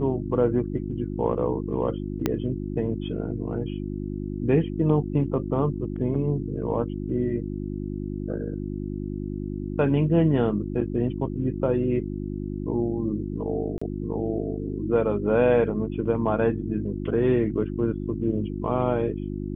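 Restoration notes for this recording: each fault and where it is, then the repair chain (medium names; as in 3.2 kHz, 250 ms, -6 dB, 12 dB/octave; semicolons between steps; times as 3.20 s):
hum 50 Hz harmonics 7 -31 dBFS
2.26 s: pop -10 dBFS
13.78–13.81 s: dropout 35 ms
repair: de-click; de-hum 50 Hz, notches 7; interpolate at 13.78 s, 35 ms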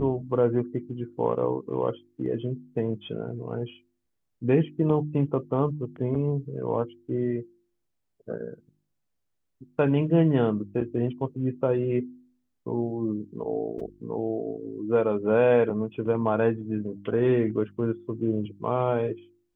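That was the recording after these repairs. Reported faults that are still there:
2.26 s: pop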